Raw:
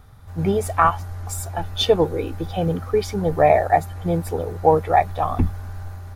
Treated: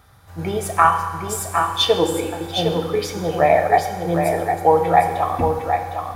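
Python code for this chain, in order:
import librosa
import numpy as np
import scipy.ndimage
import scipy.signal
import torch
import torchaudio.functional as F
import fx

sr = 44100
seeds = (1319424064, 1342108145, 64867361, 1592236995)

p1 = scipy.signal.sosfilt(scipy.signal.butter(2, 51.0, 'highpass', fs=sr, output='sos'), x)
p2 = fx.low_shelf(p1, sr, hz=470.0, db=-9.0)
p3 = p2 + fx.echo_single(p2, sr, ms=759, db=-6.0, dry=0)
p4 = fx.rev_fdn(p3, sr, rt60_s=1.4, lf_ratio=1.0, hf_ratio=0.95, size_ms=18.0, drr_db=5.0)
y = p4 * 10.0 ** (3.0 / 20.0)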